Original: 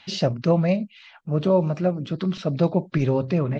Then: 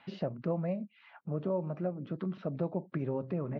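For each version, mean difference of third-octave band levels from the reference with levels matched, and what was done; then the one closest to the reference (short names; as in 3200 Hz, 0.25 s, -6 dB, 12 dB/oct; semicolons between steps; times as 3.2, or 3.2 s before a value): 3.0 dB: HPF 140 Hz; compressor 2:1, threshold -36 dBFS, peak gain reduction 12 dB; LPF 1500 Hz 12 dB/oct; gain -2 dB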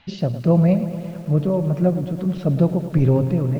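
7.0 dB: tilt -3 dB/oct; tremolo 1.6 Hz, depth 49%; lo-fi delay 0.109 s, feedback 80%, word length 7-bit, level -13 dB; gain -1 dB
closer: first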